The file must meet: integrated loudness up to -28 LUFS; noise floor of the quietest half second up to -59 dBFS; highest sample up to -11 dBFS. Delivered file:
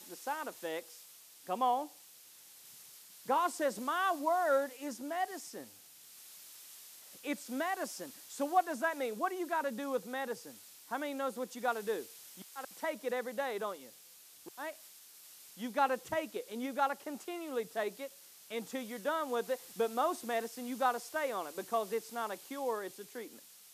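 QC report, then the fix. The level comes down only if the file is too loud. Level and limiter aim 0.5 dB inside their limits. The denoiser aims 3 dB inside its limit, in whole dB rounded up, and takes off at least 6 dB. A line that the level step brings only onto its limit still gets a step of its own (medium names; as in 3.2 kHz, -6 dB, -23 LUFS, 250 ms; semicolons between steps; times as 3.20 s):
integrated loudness -36.5 LUFS: pass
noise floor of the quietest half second -58 dBFS: fail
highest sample -17.0 dBFS: pass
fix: noise reduction 6 dB, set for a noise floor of -58 dBFS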